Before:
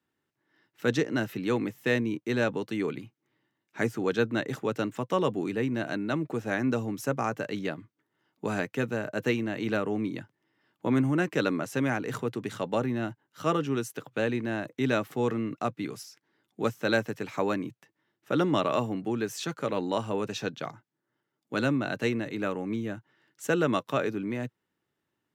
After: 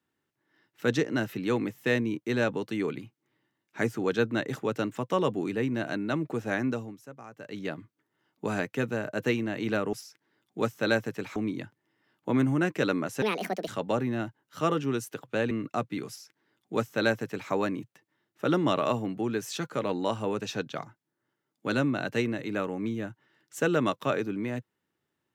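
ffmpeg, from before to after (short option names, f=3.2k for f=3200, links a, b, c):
-filter_complex "[0:a]asplit=8[a][b][c][d][e][f][g][h];[a]atrim=end=7,asetpts=PTS-STARTPTS,afade=t=out:st=6.58:d=0.42:silence=0.141254[i];[b]atrim=start=7:end=7.35,asetpts=PTS-STARTPTS,volume=-17dB[j];[c]atrim=start=7.35:end=9.932,asetpts=PTS-STARTPTS,afade=t=in:d=0.42:silence=0.141254[k];[d]atrim=start=15.948:end=17.382[l];[e]atrim=start=9.928:end=11.794[m];[f]atrim=start=11.79:end=12.51,asetpts=PTS-STARTPTS,asetrate=69237,aresample=44100,atrim=end_sample=20224,asetpts=PTS-STARTPTS[n];[g]atrim=start=12.506:end=14.342[o];[h]atrim=start=15.378[p];[i][j][k]concat=n=3:v=0:a=1[q];[q][l]acrossfade=d=0.004:c1=hsin:c2=hsin[r];[r][m]acrossfade=d=0.004:c1=hsin:c2=hsin[s];[s][n]acrossfade=d=0.004:c1=hsin:c2=hsin[t];[t][o]acrossfade=d=0.004:c1=hsin:c2=hsin[u];[u][p]acrossfade=d=0.004:c1=hsin:c2=hsin"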